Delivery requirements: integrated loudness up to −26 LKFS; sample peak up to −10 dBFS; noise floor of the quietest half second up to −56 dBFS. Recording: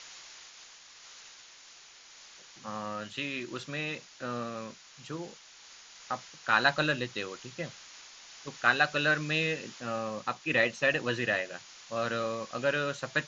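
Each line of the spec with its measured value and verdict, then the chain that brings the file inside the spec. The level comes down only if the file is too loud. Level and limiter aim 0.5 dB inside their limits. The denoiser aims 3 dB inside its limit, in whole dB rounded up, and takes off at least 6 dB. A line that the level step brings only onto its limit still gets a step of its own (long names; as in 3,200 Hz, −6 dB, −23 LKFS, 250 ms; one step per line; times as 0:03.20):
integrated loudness −31.0 LKFS: in spec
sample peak −9.0 dBFS: out of spec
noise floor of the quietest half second −54 dBFS: out of spec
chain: broadband denoise 6 dB, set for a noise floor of −54 dBFS
brickwall limiter −10.5 dBFS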